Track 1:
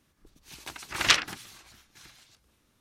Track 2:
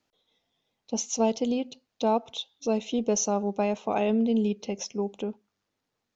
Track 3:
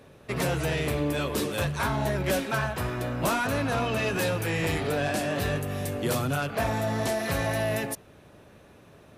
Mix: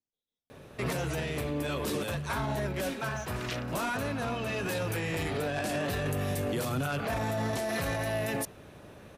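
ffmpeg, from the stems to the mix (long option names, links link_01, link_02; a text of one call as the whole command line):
ffmpeg -i stem1.wav -i stem2.wav -i stem3.wav -filter_complex "[0:a]adelay=2400,volume=-14.5dB[link_01];[1:a]equalizer=frequency=1400:width=0.43:gain=-15,asoftclip=type=tanh:threshold=-25.5dB,volume=-15.5dB,asplit=2[link_02][link_03];[2:a]adelay=500,volume=2.5dB[link_04];[link_03]apad=whole_len=426759[link_05];[link_04][link_05]sidechaincompress=threshold=-52dB:ratio=8:attack=7.2:release=872[link_06];[link_01][link_02][link_06]amix=inputs=3:normalize=0,alimiter=limit=-23.5dB:level=0:latency=1:release=13" out.wav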